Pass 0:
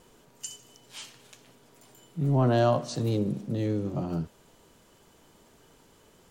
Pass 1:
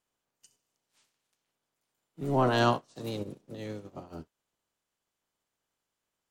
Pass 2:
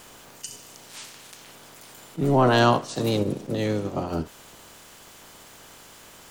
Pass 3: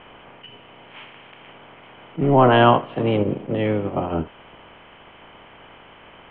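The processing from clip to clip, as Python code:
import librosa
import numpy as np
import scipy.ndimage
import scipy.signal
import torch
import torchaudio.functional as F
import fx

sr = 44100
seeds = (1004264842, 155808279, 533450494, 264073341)

y1 = fx.spec_clip(x, sr, under_db=15)
y1 = fx.upward_expand(y1, sr, threshold_db=-39.0, expansion=2.5)
y2 = fx.env_flatten(y1, sr, amount_pct=50)
y2 = F.gain(torch.from_numpy(y2), 5.5).numpy()
y3 = scipy.signal.sosfilt(scipy.signal.cheby1(6, 3, 3200.0, 'lowpass', fs=sr, output='sos'), y2)
y3 = F.gain(torch.from_numpy(y3), 6.0).numpy()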